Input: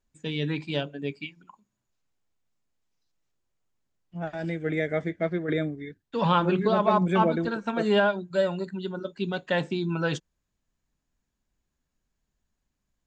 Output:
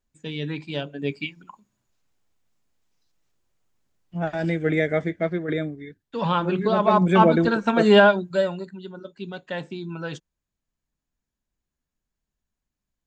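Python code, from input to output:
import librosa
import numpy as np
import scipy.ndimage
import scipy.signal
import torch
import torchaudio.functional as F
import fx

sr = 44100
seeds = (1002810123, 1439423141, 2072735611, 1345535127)

y = fx.gain(x, sr, db=fx.line((0.75, -1.0), (1.16, 6.5), (4.62, 6.5), (5.78, -0.5), (6.46, -0.5), (7.38, 8.0), (8.12, 8.0), (8.77, -5.0)))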